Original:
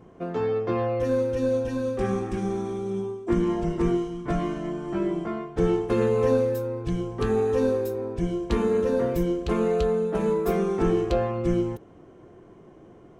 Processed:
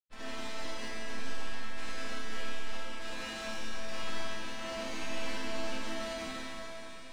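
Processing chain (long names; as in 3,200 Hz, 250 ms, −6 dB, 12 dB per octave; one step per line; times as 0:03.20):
loose part that buzzes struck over −33 dBFS, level −16 dBFS
high-pass filter 74 Hz 12 dB per octave
reverb reduction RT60 1.8 s
dynamic equaliser 310 Hz, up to −4 dB, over −39 dBFS, Q 0.71
in parallel at −5 dB: bit-depth reduction 6 bits, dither none
on the sum: comparator with hysteresis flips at −17.5 dBFS
time stretch by phase vocoder 0.54×
wrap-around overflow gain 35.5 dB
high-frequency loss of the air 100 metres
resonators tuned to a chord A3 minor, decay 0.47 s
on a send: delay that swaps between a low-pass and a high-pass 132 ms, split 1,300 Hz, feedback 87%, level −13 dB
on the sum: four-comb reverb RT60 3.9 s, combs from 31 ms, DRR −5.5 dB
level +17.5 dB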